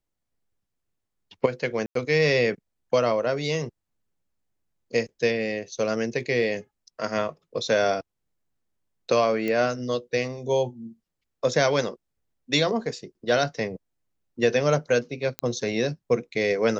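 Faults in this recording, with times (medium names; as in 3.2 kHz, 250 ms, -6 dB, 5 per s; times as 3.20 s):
1.86–1.95 s: dropout 93 ms
9.48 s: pop -16 dBFS
15.39 s: pop -12 dBFS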